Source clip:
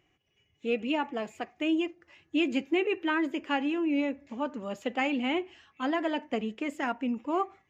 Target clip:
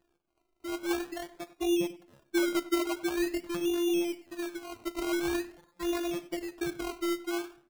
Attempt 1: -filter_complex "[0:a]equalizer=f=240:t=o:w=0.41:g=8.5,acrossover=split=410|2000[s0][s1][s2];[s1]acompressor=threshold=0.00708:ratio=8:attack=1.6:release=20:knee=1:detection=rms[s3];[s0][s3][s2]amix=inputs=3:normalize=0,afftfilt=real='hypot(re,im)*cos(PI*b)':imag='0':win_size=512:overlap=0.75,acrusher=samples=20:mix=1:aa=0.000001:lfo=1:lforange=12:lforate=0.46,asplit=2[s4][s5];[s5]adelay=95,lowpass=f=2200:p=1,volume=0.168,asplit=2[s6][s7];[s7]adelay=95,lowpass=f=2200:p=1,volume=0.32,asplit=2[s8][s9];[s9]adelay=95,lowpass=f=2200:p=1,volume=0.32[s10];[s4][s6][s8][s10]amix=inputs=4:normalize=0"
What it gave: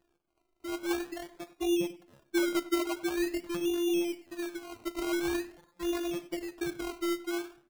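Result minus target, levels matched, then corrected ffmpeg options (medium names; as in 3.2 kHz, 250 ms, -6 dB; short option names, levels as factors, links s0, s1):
compression: peak gain reduction +5 dB
-filter_complex "[0:a]equalizer=f=240:t=o:w=0.41:g=8.5,acrossover=split=410|2000[s0][s1][s2];[s1]acompressor=threshold=0.0141:ratio=8:attack=1.6:release=20:knee=1:detection=rms[s3];[s0][s3][s2]amix=inputs=3:normalize=0,afftfilt=real='hypot(re,im)*cos(PI*b)':imag='0':win_size=512:overlap=0.75,acrusher=samples=20:mix=1:aa=0.000001:lfo=1:lforange=12:lforate=0.46,asplit=2[s4][s5];[s5]adelay=95,lowpass=f=2200:p=1,volume=0.168,asplit=2[s6][s7];[s7]adelay=95,lowpass=f=2200:p=1,volume=0.32,asplit=2[s8][s9];[s9]adelay=95,lowpass=f=2200:p=1,volume=0.32[s10];[s4][s6][s8][s10]amix=inputs=4:normalize=0"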